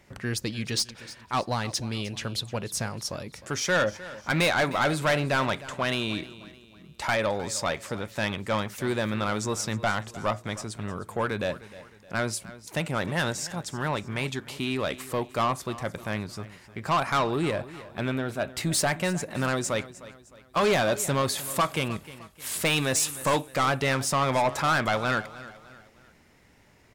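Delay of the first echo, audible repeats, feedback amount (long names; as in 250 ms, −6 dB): 307 ms, 3, 41%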